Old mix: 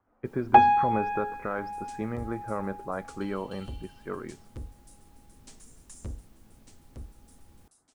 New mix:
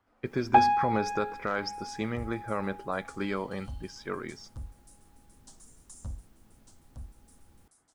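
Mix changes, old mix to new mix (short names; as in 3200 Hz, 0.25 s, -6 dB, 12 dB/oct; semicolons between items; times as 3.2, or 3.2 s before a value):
speech: remove LPF 1400 Hz 12 dB/oct; first sound -3.5 dB; second sound: add fixed phaser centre 940 Hz, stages 4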